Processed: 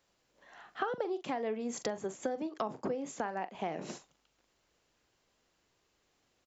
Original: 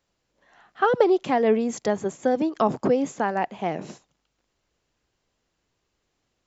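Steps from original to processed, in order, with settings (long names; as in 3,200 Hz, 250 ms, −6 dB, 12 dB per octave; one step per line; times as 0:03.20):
low-shelf EQ 190 Hz −7.5 dB
double-tracking delay 42 ms −13.5 dB
downward compressor 8 to 1, threshold −34 dBFS, peak gain reduction 19 dB
0:02.19–0:03.55: multiband upward and downward expander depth 40%
level +1.5 dB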